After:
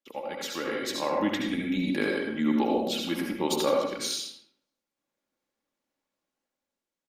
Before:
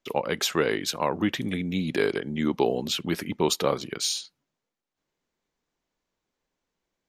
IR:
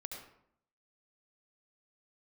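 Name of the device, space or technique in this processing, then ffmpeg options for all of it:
far-field microphone of a smart speaker: -filter_complex "[0:a]asettb=1/sr,asplit=3[a][b][c];[a]atrim=end=2.214[d];[b]atrim=start=2.21:end=3,asetpts=PTS-STARTPTS,afade=t=in:d=0.004:c=qsin,afade=t=out:st=0.786:d=0.004:c=qsin,bandreject=f=48.51:t=h:w=4,bandreject=f=97.02:t=h:w=4,bandreject=f=145.53:t=h:w=4,bandreject=f=194.04:t=h:w=4,bandreject=f=242.55:t=h:w=4,bandreject=f=291.06:t=h:w=4,bandreject=f=339.57:t=h:w=4,bandreject=f=388.08:t=h:w=4,bandreject=f=436.59:t=h:w=4,bandreject=f=485.1:t=h:w=4,bandreject=f=533.61:t=h:w=4,bandreject=f=582.12:t=h:w=4,bandreject=f=630.63:t=h:w=4,bandreject=f=679.14:t=h:w=4,bandreject=f=727.65:t=h:w=4[e];[c]atrim=start=2.996[f];[d][e]acrossfade=d=0.004:c1=hsin:c2=qsin[g];[g][f]acrossfade=d=0.004:c1=qsin:c2=hsin,aecho=1:1:3.6:0.54,aecho=1:1:83|166:0.266|0.0399[h];[1:a]atrim=start_sample=2205[i];[h][i]afir=irnorm=-1:irlink=0,highpass=140,dynaudnorm=f=130:g=13:m=9dB,volume=-8dB" -ar 48000 -c:a libopus -b:a 48k

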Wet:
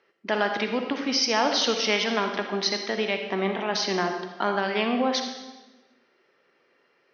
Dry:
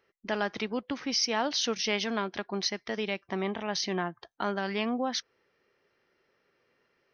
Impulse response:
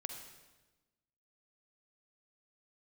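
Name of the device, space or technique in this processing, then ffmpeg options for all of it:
supermarket ceiling speaker: -filter_complex "[0:a]highpass=220,lowpass=5.5k[a];[1:a]atrim=start_sample=2205[b];[a][b]afir=irnorm=-1:irlink=0,volume=8.5dB"

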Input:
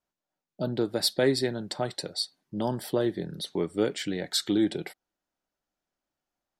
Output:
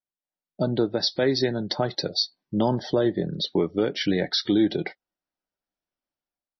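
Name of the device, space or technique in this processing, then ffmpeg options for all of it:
low-bitrate web radio: -filter_complex "[0:a]asettb=1/sr,asplit=3[a][b][c];[a]atrim=end=2.704[d];[b]atrim=start=2.7:end=3.44,asetpts=PTS-STARTPTS,afade=t=in:d=0.004:c=qsin,afade=t=out:st=0.736:d=0.004:c=qsin,equalizer=f=570:t=o:w=0.23:g=2.5[e];[c]atrim=start=3.436[f];[d][e]acrossfade=d=0.004:c1=hsin:c2=qsin[g];[g][f]acrossfade=d=0.004:c1=qsin:c2=hsin,afftdn=nr=14:nf=-45,dynaudnorm=f=190:g=5:m=9dB,alimiter=limit=-11.5dB:level=0:latency=1:release=253" -ar 24000 -c:a libmp3lame -b:a 24k

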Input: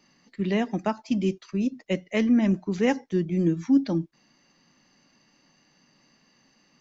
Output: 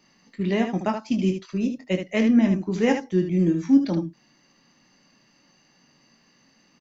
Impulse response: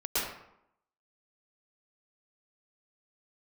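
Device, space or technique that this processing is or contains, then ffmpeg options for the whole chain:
slapback doubling: -filter_complex "[0:a]asplit=3[a][b][c];[b]adelay=22,volume=-7.5dB[d];[c]adelay=75,volume=-7dB[e];[a][d][e]amix=inputs=3:normalize=0,volume=1dB"

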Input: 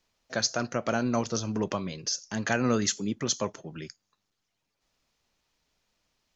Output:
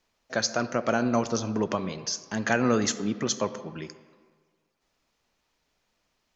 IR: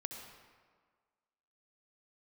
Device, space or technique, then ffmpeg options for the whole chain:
filtered reverb send: -filter_complex "[0:a]asplit=2[a][b];[b]highpass=170,lowpass=3k[c];[1:a]atrim=start_sample=2205[d];[c][d]afir=irnorm=-1:irlink=0,volume=-4dB[e];[a][e]amix=inputs=2:normalize=0"

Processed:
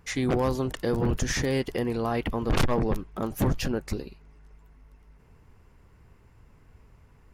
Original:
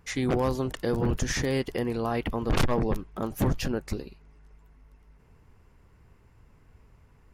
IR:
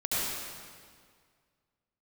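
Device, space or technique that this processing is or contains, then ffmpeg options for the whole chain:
parallel distortion: -filter_complex "[0:a]asplit=2[a][b];[b]asoftclip=type=hard:threshold=-30.5dB,volume=-13.5dB[c];[a][c]amix=inputs=2:normalize=0"

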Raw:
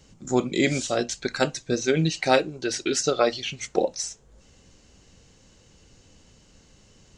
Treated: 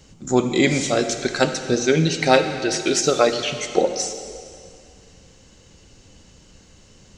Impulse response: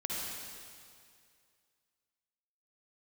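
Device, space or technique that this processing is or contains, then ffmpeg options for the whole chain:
saturated reverb return: -filter_complex "[0:a]asplit=2[a][b];[1:a]atrim=start_sample=2205[c];[b][c]afir=irnorm=-1:irlink=0,asoftclip=type=tanh:threshold=-12dB,volume=-8.5dB[d];[a][d]amix=inputs=2:normalize=0,volume=2.5dB"

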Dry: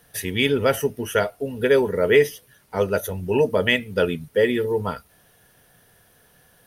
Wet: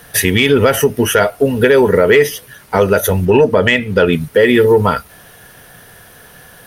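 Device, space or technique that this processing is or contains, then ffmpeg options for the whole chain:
mastering chain: -filter_complex "[0:a]asettb=1/sr,asplit=3[a][b][c];[a]atrim=end=3.254[d];[b]atrim=start=3.25:end=4.13,asetpts=PTS-STARTPTS,afade=t=in:d=0.004:c=qsin,afade=t=out:st=0.876:d=0.004:c=qsin,highshelf=f=7.8k:g=-12[e];[c]atrim=start=4.126[f];[d][e]acrossfade=d=0.004:c1=hsin:c2=qsin[g];[g][f]acrossfade=d=0.004:c1=qsin:c2=hsin,equalizer=f=1.5k:t=o:w=1.6:g=3.5,acompressor=threshold=-20dB:ratio=2.5,asoftclip=type=tanh:threshold=-10.5dB,alimiter=level_in=16dB:limit=-1dB:release=50:level=0:latency=1,volume=-1dB"

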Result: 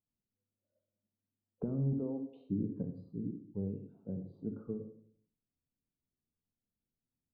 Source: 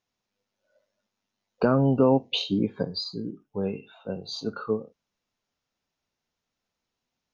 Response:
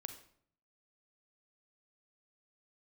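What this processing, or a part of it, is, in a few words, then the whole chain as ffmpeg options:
television next door: -filter_complex "[0:a]asettb=1/sr,asplit=3[a][b][c];[a]atrim=end=1.934[d];[b]atrim=start=1.93:end=2.46,asetpts=PTS-STARTPTS,afade=t=in:d=0.004:c=qsin,afade=t=out:st=0.526:d=0.004:c=qsin,highpass=f=270:w=0.5412,highpass=f=270:w=1.3066[e];[c]atrim=start=2.456[f];[d][e]acrossfade=d=0.004:c1=hsin:c2=qsin[g];[g][f]acrossfade=d=0.004:c1=qsin:c2=hsin,acompressor=threshold=-25dB:ratio=4,lowpass=260[h];[1:a]atrim=start_sample=2205[i];[h][i]afir=irnorm=-1:irlink=0,volume=1dB"

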